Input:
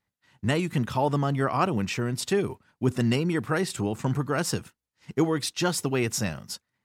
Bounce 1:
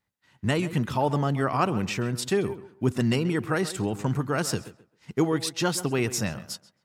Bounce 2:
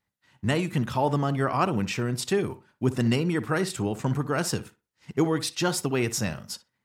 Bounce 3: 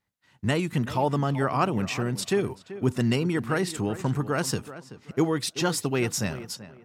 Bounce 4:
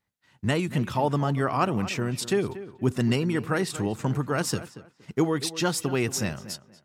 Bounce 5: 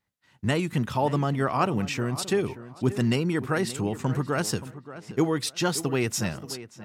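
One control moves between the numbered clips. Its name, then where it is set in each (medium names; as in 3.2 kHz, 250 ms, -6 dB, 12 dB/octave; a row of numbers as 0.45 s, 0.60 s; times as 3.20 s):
tape echo, time: 134 ms, 60 ms, 382 ms, 235 ms, 578 ms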